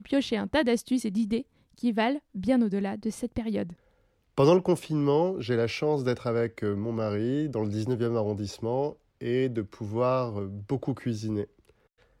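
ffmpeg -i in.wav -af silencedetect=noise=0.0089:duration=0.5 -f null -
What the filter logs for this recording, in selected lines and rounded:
silence_start: 3.73
silence_end: 4.38 | silence_duration: 0.65
silence_start: 11.45
silence_end: 12.20 | silence_duration: 0.75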